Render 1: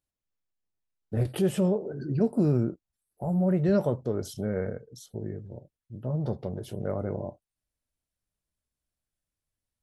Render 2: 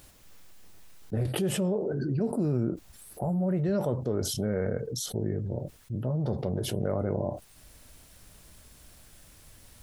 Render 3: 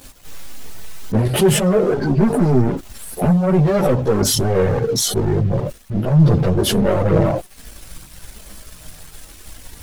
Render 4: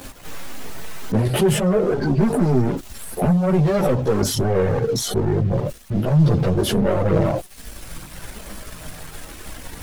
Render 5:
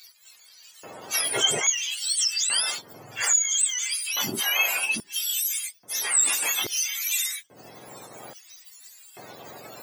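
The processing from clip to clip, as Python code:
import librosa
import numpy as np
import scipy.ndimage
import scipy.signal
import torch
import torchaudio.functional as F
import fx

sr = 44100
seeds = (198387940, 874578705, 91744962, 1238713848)

y1 = fx.env_flatten(x, sr, amount_pct=70)
y1 = F.gain(torch.from_numpy(y1), -5.5).numpy()
y2 = fx.leveller(y1, sr, passes=3)
y2 = fx.chorus_voices(y2, sr, voices=6, hz=0.29, base_ms=15, depth_ms=4.4, mix_pct=65)
y2 = F.gain(torch.from_numpy(y2), 8.5).numpy()
y3 = fx.band_squash(y2, sr, depth_pct=40)
y3 = F.gain(torch.from_numpy(y3), -2.5).numpy()
y4 = fx.octave_mirror(y3, sr, pivot_hz=1100.0)
y4 = fx.filter_lfo_highpass(y4, sr, shape='square', hz=0.6, low_hz=560.0, high_hz=4100.0, q=0.97)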